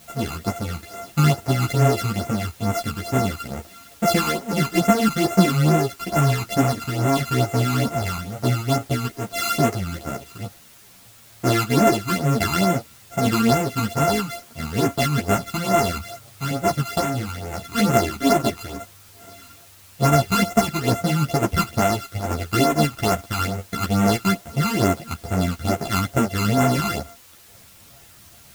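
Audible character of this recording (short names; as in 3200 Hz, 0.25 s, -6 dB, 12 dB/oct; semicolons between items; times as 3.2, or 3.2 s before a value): a buzz of ramps at a fixed pitch in blocks of 64 samples; phasing stages 12, 2.3 Hz, lowest notch 560–4500 Hz; a quantiser's noise floor 8-bit, dither triangular; a shimmering, thickened sound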